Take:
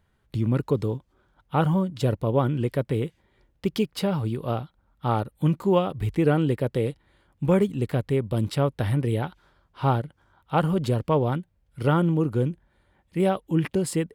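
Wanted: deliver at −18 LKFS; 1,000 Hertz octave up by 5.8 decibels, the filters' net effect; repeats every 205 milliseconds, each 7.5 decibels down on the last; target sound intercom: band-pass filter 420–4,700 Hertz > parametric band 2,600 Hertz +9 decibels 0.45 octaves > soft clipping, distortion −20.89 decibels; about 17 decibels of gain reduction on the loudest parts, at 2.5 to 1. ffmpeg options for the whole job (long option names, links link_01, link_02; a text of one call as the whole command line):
ffmpeg -i in.wav -af "equalizer=frequency=1000:width_type=o:gain=7.5,acompressor=threshold=-41dB:ratio=2.5,highpass=420,lowpass=4700,equalizer=frequency=2600:width_type=o:width=0.45:gain=9,aecho=1:1:205|410|615|820|1025:0.422|0.177|0.0744|0.0312|0.0131,asoftclip=threshold=-26dB,volume=24.5dB" out.wav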